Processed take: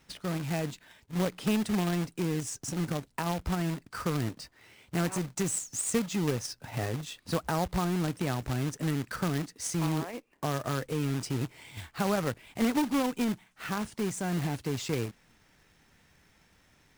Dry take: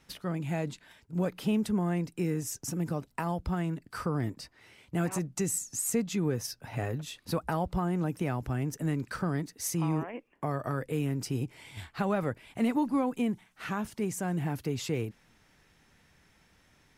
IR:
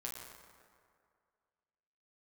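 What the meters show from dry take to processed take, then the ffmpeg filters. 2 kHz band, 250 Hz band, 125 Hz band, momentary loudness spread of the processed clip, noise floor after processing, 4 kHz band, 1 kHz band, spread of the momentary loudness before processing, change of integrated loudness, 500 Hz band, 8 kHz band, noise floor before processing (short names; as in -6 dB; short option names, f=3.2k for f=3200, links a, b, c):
+2.5 dB, 0.0 dB, 0.0 dB, 7 LU, -65 dBFS, +4.5 dB, +1.0 dB, 7 LU, +0.5 dB, +0.5 dB, +1.0 dB, -65 dBFS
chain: -af "aresample=22050,aresample=44100,acrusher=bits=2:mode=log:mix=0:aa=0.000001"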